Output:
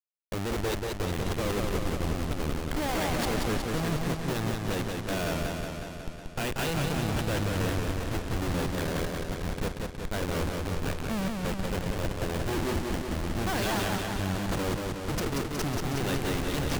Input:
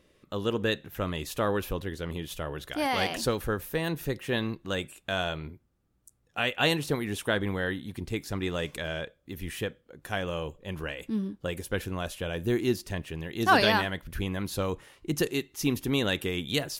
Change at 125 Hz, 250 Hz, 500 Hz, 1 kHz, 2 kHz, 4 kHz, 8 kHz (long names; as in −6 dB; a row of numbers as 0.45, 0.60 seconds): +3.5, +0.5, −1.5, −1.5, −3.5, −3.5, +3.0 decibels